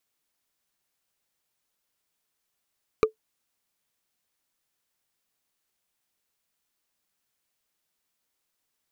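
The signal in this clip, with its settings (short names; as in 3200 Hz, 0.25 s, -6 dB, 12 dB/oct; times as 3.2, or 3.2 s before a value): wood hit, lowest mode 437 Hz, decay 0.11 s, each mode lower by 5 dB, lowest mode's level -11 dB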